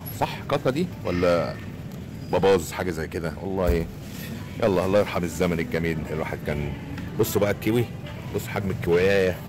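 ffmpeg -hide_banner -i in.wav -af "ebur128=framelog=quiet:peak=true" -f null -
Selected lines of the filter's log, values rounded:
Integrated loudness:
  I:         -25.1 LUFS
  Threshold: -35.4 LUFS
Loudness range:
  LRA:         1.9 LU
  Threshold: -45.7 LUFS
  LRA low:   -26.8 LUFS
  LRA high:  -24.9 LUFS
True peak:
  Peak:      -12.9 dBFS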